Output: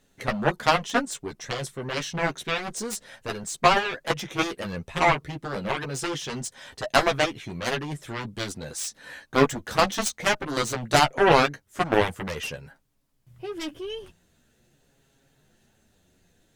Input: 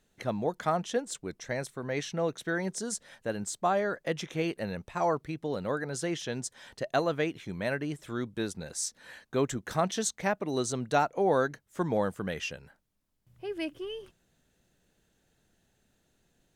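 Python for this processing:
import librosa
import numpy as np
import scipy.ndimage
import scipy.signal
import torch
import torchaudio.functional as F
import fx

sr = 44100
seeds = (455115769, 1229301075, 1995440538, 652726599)

y = fx.cheby_harmonics(x, sr, harmonics=(5, 7), levels_db=(-11, -6), full_scale_db=-13.0)
y = fx.chorus_voices(y, sr, voices=4, hz=0.24, base_ms=11, depth_ms=3.7, mix_pct=40)
y = F.gain(torch.from_numpy(y), 8.5).numpy()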